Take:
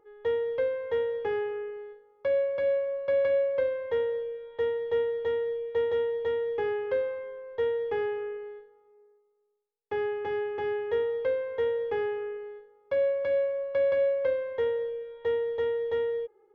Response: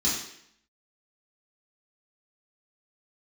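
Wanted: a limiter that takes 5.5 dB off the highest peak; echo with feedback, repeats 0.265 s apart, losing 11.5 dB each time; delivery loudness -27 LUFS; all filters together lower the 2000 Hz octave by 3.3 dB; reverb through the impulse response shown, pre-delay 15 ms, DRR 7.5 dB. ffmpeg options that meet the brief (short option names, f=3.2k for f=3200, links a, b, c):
-filter_complex "[0:a]equalizer=f=2k:t=o:g=-4,alimiter=limit=-23dB:level=0:latency=1,aecho=1:1:265|530|795:0.266|0.0718|0.0194,asplit=2[a][b];[1:a]atrim=start_sample=2205,adelay=15[c];[b][c]afir=irnorm=-1:irlink=0,volume=-17dB[d];[a][d]amix=inputs=2:normalize=0,volume=3.5dB"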